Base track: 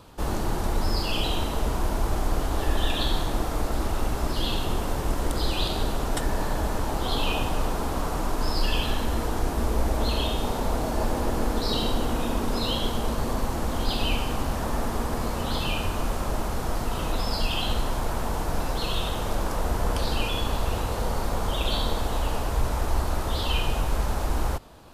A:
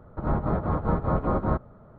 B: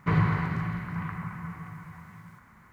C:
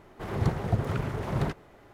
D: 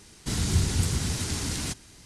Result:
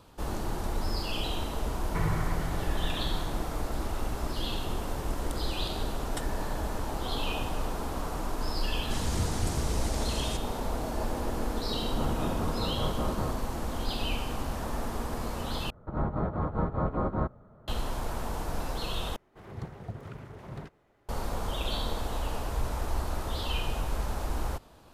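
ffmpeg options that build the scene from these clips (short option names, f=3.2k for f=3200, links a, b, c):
-filter_complex "[1:a]asplit=2[a][b];[0:a]volume=-6dB[c];[2:a]aecho=1:1:2.2:0.32[d];[a]alimiter=limit=-19.5dB:level=0:latency=1:release=71[e];[c]asplit=3[f][g][h];[f]atrim=end=15.704[i];[b]atrim=end=1.98,asetpts=PTS-STARTPTS,volume=-4.5dB[j];[g]atrim=start=17.676:end=19.164[k];[3:a]atrim=end=1.93,asetpts=PTS-STARTPTS,volume=-13dB[l];[h]atrim=start=21.086[m];[d]atrim=end=2.72,asetpts=PTS-STARTPTS,volume=-7dB,afade=t=in:d=0.004:c=hsin,afade=t=out:st=2.716:d=0.004:c=hsin,adelay=1880[n];[4:a]atrim=end=2.05,asetpts=PTS-STARTPTS,volume=-7.5dB,afade=t=in:d=0.004:c=hsin,afade=t=out:st=2.046:d=0.004:c=hsin,adelay=8640[o];[e]atrim=end=1.98,asetpts=PTS-STARTPTS,volume=-4.5dB,afade=t=in:d=0.004:c=hsin,afade=t=out:st=1.976:d=0.004:c=hsin,adelay=11740[p];[i][j]acrossfade=d=0.004:c1=hsin:c2=hsin[q];[q][k]acrossfade=d=0.004:c1=hsin:c2=hsin[r];[r][l]acrossfade=d=0.004:c1=hsin:c2=hsin[s];[s][m]acrossfade=d=0.004:c1=hsin:c2=hsin[t];[t][n][o][p]amix=inputs=4:normalize=0"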